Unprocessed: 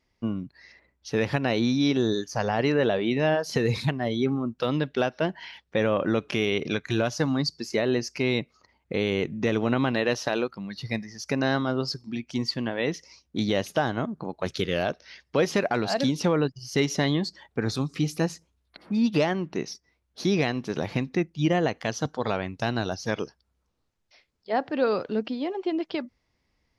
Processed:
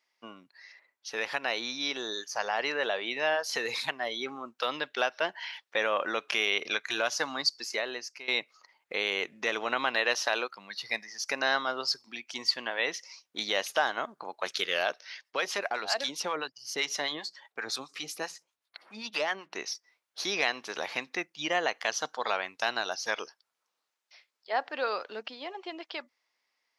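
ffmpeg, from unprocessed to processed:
-filter_complex "[0:a]asettb=1/sr,asplit=3[s0][s1][s2];[s0]atrim=end=15.214[s3];[s1]atrim=start=15.21:end=19.52,asetpts=PTS-STARTPTS,afade=t=in:d=0.004:c=qsin,afade=t=out:st=4.306:d=0.004:c=qsin,acrossover=split=730[s4][s5];[s4]aeval=exprs='val(0)*(1-0.7/2+0.7/2*cos(2*PI*7.7*n/s))':c=same[s6];[s5]aeval=exprs='val(0)*(1-0.7/2-0.7/2*cos(2*PI*7.7*n/s))':c=same[s7];[s6][s7]amix=inputs=2:normalize=0[s8];[s2]atrim=start=19.516[s9];[s3][s8]acrossfade=d=0.004:c1=hsin:c2=qsin[s10];[s10][s9]acrossfade=d=0.004:c1=qsin:c2=hsin,asplit=2[s11][s12];[s11]atrim=end=8.28,asetpts=PTS-STARTPTS,afade=t=out:st=7.56:d=0.72:silence=0.125893[s13];[s12]atrim=start=8.28,asetpts=PTS-STARTPTS,afade=t=in:d=0.004:c=hsin:silence=0.125893[s14];[s13][s14]concat=n=2:v=0:a=1,highpass=860,dynaudnorm=f=780:g=9:m=1.41"

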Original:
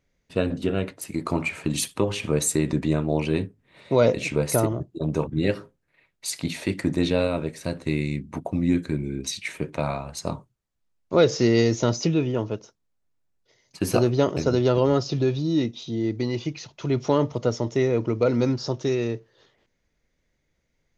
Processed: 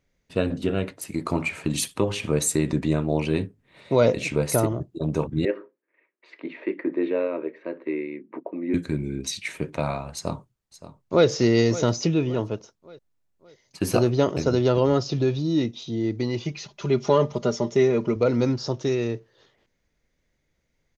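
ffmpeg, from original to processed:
-filter_complex "[0:a]asettb=1/sr,asplit=3[s0][s1][s2];[s0]atrim=end=5.454[s3];[s1]atrim=start=5.45:end=8.74,asetpts=PTS-STARTPTS,afade=t=in:d=0.004:c=qsin,afade=t=out:st=3.286:d=0.004:c=qsin,highpass=f=310:w=0.5412,highpass=f=310:w=1.3066,equalizer=f=350:t=q:w=4:g=5,equalizer=f=760:t=q:w=4:g=-10,equalizer=f=1400:t=q:w=4:g=-6,lowpass=f=2100:w=0.5412,lowpass=f=2100:w=1.3066[s4];[s2]atrim=start=8.736[s5];[s3][s4]acrossfade=d=0.004:c1=hsin:c2=qsin[s6];[s6][s5]acrossfade=d=0.004:c1=qsin:c2=hsin,asplit=2[s7][s8];[s8]afade=t=in:st=10.14:d=0.01,afade=t=out:st=11.27:d=0.01,aecho=0:1:570|1140|1710|2280:0.188365|0.0847642|0.0381439|0.0171648[s9];[s7][s9]amix=inputs=2:normalize=0,asettb=1/sr,asplit=3[s10][s11][s12];[s10]atrim=end=16.454[s13];[s11]atrim=start=16.45:end=18.16,asetpts=PTS-STARTPTS,afade=t=in:d=0.004:c=qsin,afade=t=out:st=1.706:d=0.004:c=qsin,aecho=1:1:5:0.65,atrim=end_sample=75411[s14];[s12]atrim=start=18.156[s15];[s13][s14]acrossfade=d=0.004:c1=hsin:c2=qsin[s16];[s16][s15]acrossfade=d=0.004:c1=qsin:c2=hsin"

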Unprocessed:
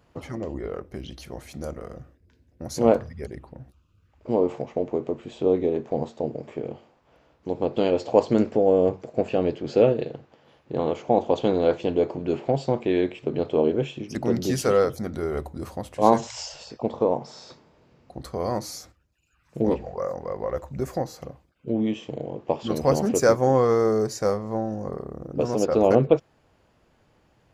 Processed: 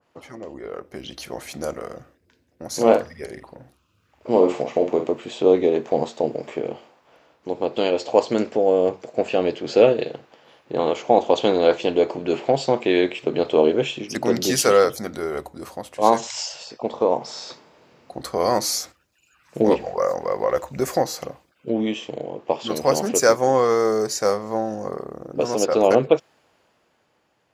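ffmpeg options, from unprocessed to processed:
-filter_complex "[0:a]asettb=1/sr,asplit=3[s0][s1][s2];[s0]atrim=end=2.684[s3];[s1]atrim=start=2.68:end=5.07,asetpts=PTS-STARTPTS,afade=t=in:d=0.004:c=qsin,afade=t=out:st=2.386:d=0.004:c=qsin,asplit=2[s4][s5];[s5]adelay=48,volume=0.447[s6];[s4][s6]amix=inputs=2:normalize=0,atrim=end_sample=105399[s7];[s2]atrim=start=5.066[s8];[s3][s7]acrossfade=d=0.004:c1=hsin:c2=qsin[s9];[s9][s8]acrossfade=d=0.004:c1=qsin:c2=hsin,highpass=f=460:p=1,dynaudnorm=f=120:g=17:m=3.76,adynamicequalizer=threshold=0.0282:dfrequency=2000:dqfactor=0.7:tfrequency=2000:tqfactor=0.7:attack=5:release=100:ratio=0.375:range=2:mode=boostabove:tftype=highshelf,volume=0.891"

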